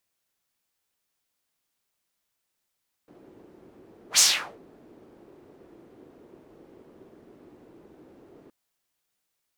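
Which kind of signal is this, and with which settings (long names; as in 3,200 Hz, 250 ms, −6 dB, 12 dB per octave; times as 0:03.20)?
pass-by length 5.42 s, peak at 0:01.11, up 0.10 s, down 0.44 s, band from 350 Hz, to 6,600 Hz, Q 2.3, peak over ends 36 dB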